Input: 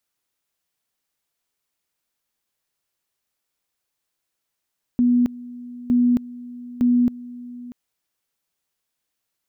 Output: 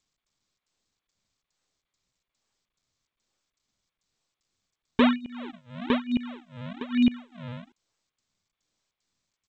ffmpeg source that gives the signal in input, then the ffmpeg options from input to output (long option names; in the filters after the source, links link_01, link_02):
-f lavfi -i "aevalsrc='pow(10,(-13.5-19.5*gte(mod(t,0.91),0.27))/20)*sin(2*PI*244*t)':duration=2.73:sample_rate=44100"
-af "tremolo=f=2.4:d=0.95,aresample=8000,acrusher=samples=12:mix=1:aa=0.000001:lfo=1:lforange=19.2:lforate=1.1,aresample=44100" -ar 16000 -c:a g722